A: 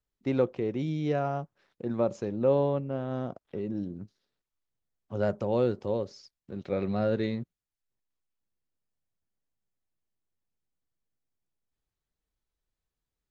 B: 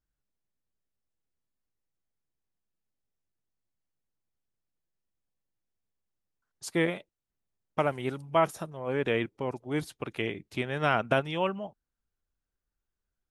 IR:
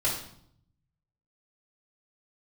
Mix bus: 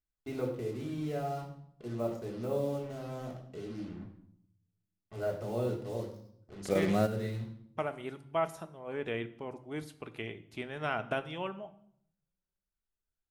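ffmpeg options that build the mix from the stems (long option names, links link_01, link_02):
-filter_complex "[0:a]acrusher=bits=6:mix=0:aa=0.5,volume=1dB,asplit=2[link_01][link_02];[link_02]volume=-19dB[link_03];[1:a]volume=-9dB,asplit=3[link_04][link_05][link_06];[link_05]volume=-18dB[link_07];[link_06]apad=whole_len=586609[link_08];[link_01][link_08]sidechaingate=range=-16dB:threshold=-53dB:ratio=16:detection=peak[link_09];[2:a]atrim=start_sample=2205[link_10];[link_03][link_07]amix=inputs=2:normalize=0[link_11];[link_11][link_10]afir=irnorm=-1:irlink=0[link_12];[link_09][link_04][link_12]amix=inputs=3:normalize=0"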